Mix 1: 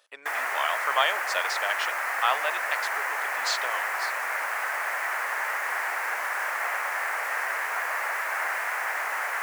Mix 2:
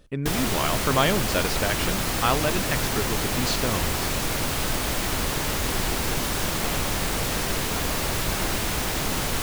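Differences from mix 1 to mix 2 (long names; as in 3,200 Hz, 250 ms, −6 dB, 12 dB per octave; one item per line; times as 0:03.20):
background: add high shelf with overshoot 2,600 Hz +11.5 dB, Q 3
master: remove high-pass filter 690 Hz 24 dB per octave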